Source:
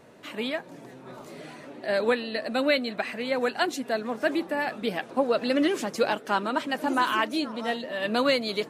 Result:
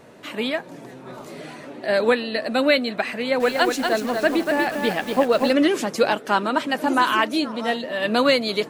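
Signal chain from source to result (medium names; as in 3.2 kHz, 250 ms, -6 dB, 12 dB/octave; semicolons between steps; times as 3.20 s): 3.16–5.53 s: bit-crushed delay 238 ms, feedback 35%, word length 7-bit, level -4 dB; trim +5.5 dB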